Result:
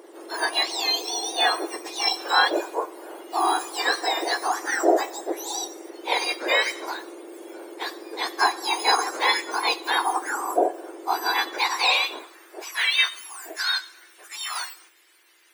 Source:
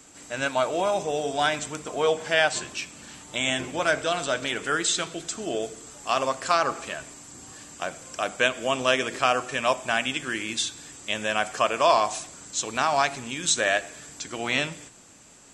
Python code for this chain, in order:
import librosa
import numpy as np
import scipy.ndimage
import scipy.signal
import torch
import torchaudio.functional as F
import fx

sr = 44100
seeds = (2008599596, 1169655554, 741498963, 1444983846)

y = fx.octave_mirror(x, sr, pivot_hz=1600.0)
y = fx.filter_sweep_highpass(y, sr, from_hz=560.0, to_hz=2100.0, start_s=11.33, end_s=13.11, q=1.4)
y = y * librosa.db_to_amplitude(3.5)